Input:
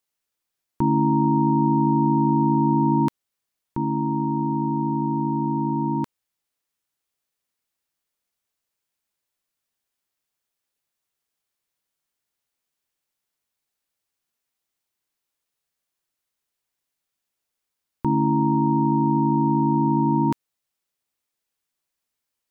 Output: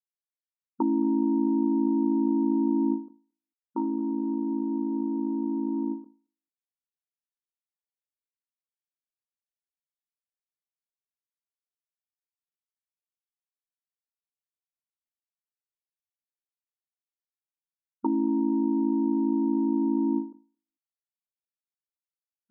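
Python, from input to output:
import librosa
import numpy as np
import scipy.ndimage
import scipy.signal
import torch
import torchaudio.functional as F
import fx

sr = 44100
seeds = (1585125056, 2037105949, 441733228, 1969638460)

p1 = fx.backlash(x, sr, play_db=-31.0)
p2 = fx.env_lowpass_down(p1, sr, base_hz=370.0, full_db=-20.0)
p3 = fx.brickwall_bandpass(p2, sr, low_hz=220.0, high_hz=1400.0)
p4 = p3 + fx.echo_feedback(p3, sr, ms=223, feedback_pct=23, wet_db=-20, dry=0)
y = fx.end_taper(p4, sr, db_per_s=150.0)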